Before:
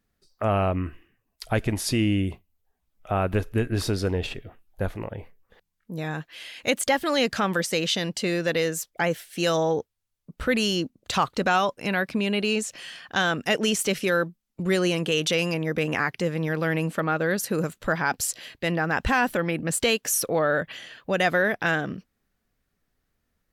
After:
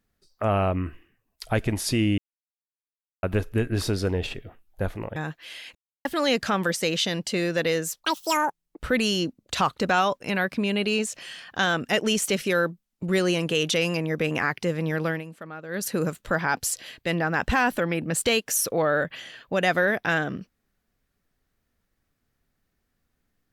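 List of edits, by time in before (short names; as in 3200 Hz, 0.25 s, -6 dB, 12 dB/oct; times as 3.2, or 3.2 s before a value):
2.18–3.23 mute
5.16–6.06 cut
6.65–6.95 mute
8.93–10.36 speed 188%
16.63–17.43 dip -14 dB, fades 0.18 s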